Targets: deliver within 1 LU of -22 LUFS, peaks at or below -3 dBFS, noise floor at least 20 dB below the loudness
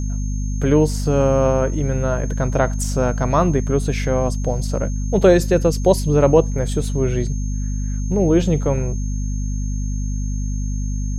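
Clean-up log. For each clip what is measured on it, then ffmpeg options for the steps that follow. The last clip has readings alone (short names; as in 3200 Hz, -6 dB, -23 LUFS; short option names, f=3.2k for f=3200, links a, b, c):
hum 50 Hz; harmonics up to 250 Hz; hum level -20 dBFS; steady tone 6400 Hz; tone level -38 dBFS; loudness -19.5 LUFS; peak -1.5 dBFS; loudness target -22.0 LUFS
-> -af "bandreject=f=50:t=h:w=4,bandreject=f=100:t=h:w=4,bandreject=f=150:t=h:w=4,bandreject=f=200:t=h:w=4,bandreject=f=250:t=h:w=4"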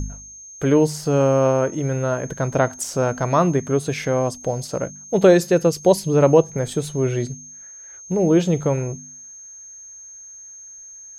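hum none; steady tone 6400 Hz; tone level -38 dBFS
-> -af "bandreject=f=6.4k:w=30"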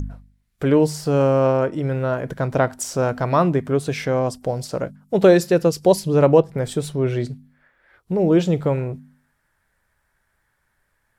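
steady tone none; loudness -20.0 LUFS; peak -3.0 dBFS; loudness target -22.0 LUFS
-> -af "volume=-2dB"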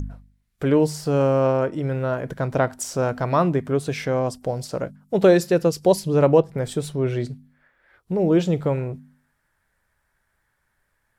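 loudness -22.0 LUFS; peak -5.0 dBFS; noise floor -72 dBFS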